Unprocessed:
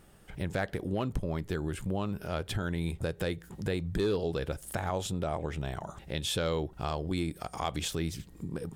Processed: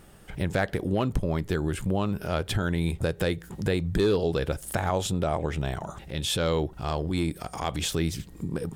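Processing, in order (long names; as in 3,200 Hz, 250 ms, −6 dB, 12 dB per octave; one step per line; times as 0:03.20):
0:05.74–0:07.92: transient designer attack −8 dB, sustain 0 dB
level +6 dB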